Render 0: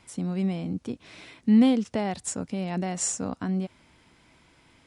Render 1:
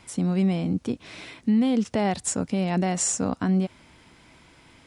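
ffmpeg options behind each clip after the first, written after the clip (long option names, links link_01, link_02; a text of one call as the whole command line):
ffmpeg -i in.wav -af "alimiter=limit=-20.5dB:level=0:latency=1:release=68,volume=5.5dB" out.wav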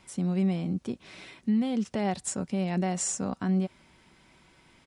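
ffmpeg -i in.wav -af "aecho=1:1:5.3:0.31,volume=-6dB" out.wav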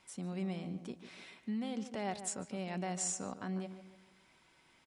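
ffmpeg -i in.wav -filter_complex "[0:a]lowshelf=frequency=310:gain=-9.5,asplit=2[link_01][link_02];[link_02]adelay=147,lowpass=frequency=2100:poles=1,volume=-10.5dB,asplit=2[link_03][link_04];[link_04]adelay=147,lowpass=frequency=2100:poles=1,volume=0.41,asplit=2[link_05][link_06];[link_06]adelay=147,lowpass=frequency=2100:poles=1,volume=0.41,asplit=2[link_07][link_08];[link_08]adelay=147,lowpass=frequency=2100:poles=1,volume=0.41[link_09];[link_01][link_03][link_05][link_07][link_09]amix=inputs=5:normalize=0,volume=-6dB" out.wav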